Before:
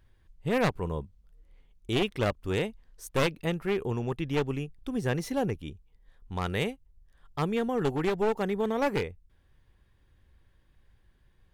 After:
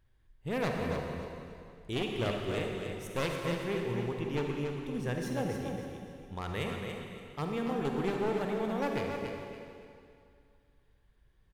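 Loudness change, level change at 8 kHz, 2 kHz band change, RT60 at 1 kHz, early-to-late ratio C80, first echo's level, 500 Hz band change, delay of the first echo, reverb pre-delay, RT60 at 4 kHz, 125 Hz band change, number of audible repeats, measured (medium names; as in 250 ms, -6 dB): -4.5 dB, -4.0 dB, -4.0 dB, 2.4 s, 1.0 dB, -6.0 dB, -4.0 dB, 283 ms, 35 ms, 2.2 s, -4.0 dB, 3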